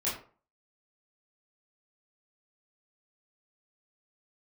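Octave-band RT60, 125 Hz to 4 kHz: 0.40 s, 0.40 s, 0.40 s, 0.40 s, 0.35 s, 0.25 s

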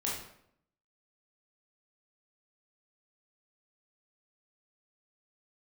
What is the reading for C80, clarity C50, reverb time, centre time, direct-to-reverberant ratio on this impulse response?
6.5 dB, 2.0 dB, 0.70 s, 50 ms, -5.0 dB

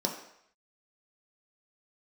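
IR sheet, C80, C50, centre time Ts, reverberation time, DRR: 9.5 dB, 7.0 dB, 26 ms, 0.70 s, 0.0 dB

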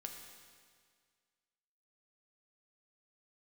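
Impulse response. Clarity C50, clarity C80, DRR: 4.5 dB, 5.5 dB, 2.0 dB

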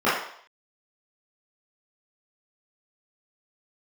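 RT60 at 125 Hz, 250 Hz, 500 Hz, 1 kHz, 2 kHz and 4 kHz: 0.35 s, 0.45 s, 0.65 s, 0.65 s, 0.60 s, 0.65 s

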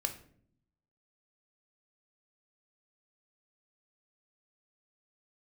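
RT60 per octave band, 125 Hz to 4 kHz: 1.1 s, 1.0 s, 0.70 s, 0.50 s, 0.45 s, 0.35 s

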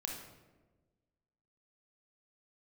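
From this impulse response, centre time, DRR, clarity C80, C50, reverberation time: 43 ms, 0.5 dB, 6.5 dB, 3.5 dB, 1.3 s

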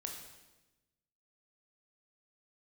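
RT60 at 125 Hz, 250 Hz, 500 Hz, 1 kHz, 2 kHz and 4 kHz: 1.5 s, 1.4 s, 1.1 s, 1.0 s, 1.0 s, 1.0 s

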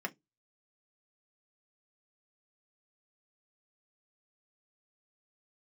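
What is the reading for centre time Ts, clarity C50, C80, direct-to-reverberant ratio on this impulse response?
4 ms, 26.5 dB, 38.0 dB, 2.0 dB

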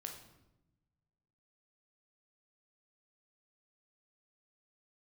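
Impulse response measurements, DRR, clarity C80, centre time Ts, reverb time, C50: 2.5 dB, 9.5 dB, 26 ms, 0.95 s, 6.0 dB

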